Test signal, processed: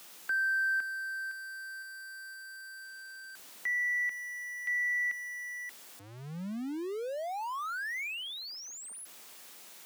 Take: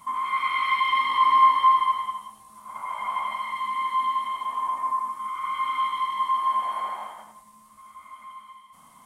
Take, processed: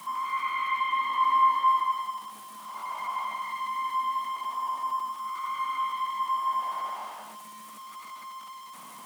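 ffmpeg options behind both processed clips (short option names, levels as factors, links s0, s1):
-filter_complex "[0:a]aeval=exprs='val(0)+0.5*0.0158*sgn(val(0))':c=same,highpass=f=170:w=0.5412,highpass=f=170:w=1.3066,acrossover=split=230|480|2600[s0][s1][s2][s3];[s3]alimiter=level_in=4.22:limit=0.0631:level=0:latency=1:release=23,volume=0.237[s4];[s0][s1][s2][s4]amix=inputs=4:normalize=0,volume=0.562"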